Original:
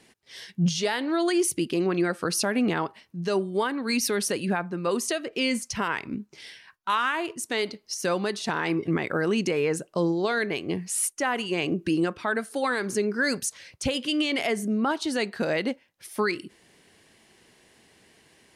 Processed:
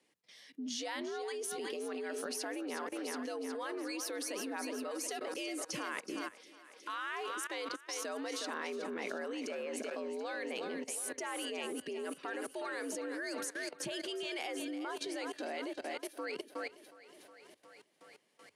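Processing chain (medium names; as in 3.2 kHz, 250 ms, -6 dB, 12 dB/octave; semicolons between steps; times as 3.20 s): thinning echo 365 ms, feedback 64%, high-pass 160 Hz, level -10 dB; level held to a coarse grid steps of 18 dB; frequency shift +80 Hz; trim -3.5 dB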